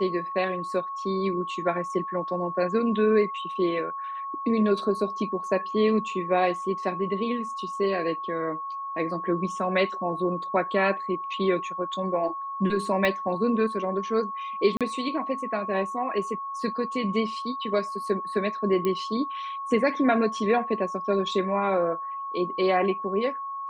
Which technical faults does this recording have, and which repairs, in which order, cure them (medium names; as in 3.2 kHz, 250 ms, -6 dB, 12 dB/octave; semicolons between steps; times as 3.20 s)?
whine 1.1 kHz -31 dBFS
13.05 s: pop -12 dBFS
14.77–14.81 s: dropout 37 ms
18.85 s: pop -15 dBFS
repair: de-click; band-stop 1.1 kHz, Q 30; interpolate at 14.77 s, 37 ms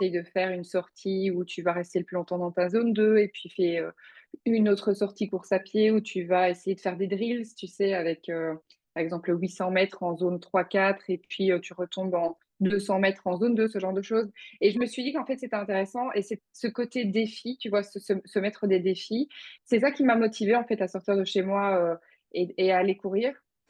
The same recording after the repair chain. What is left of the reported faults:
13.05 s: pop